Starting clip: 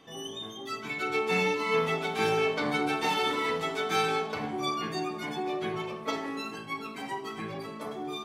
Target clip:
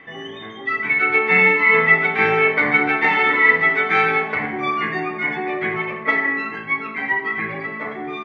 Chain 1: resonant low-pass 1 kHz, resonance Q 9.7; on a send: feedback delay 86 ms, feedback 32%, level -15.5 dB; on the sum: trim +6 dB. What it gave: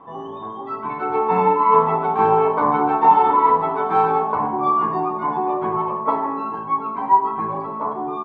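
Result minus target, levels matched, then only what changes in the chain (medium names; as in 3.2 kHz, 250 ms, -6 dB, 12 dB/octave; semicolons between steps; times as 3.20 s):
2 kHz band -19.0 dB
change: resonant low-pass 2 kHz, resonance Q 9.7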